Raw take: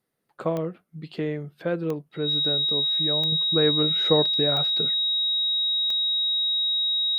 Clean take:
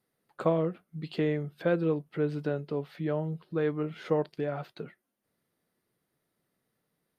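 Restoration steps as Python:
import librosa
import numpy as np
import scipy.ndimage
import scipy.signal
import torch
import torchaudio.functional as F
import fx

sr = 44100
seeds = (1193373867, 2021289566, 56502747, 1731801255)

y = fx.fix_declick_ar(x, sr, threshold=10.0)
y = fx.notch(y, sr, hz=3800.0, q=30.0)
y = fx.gain(y, sr, db=fx.steps((0.0, 0.0), (3.32, -6.5)))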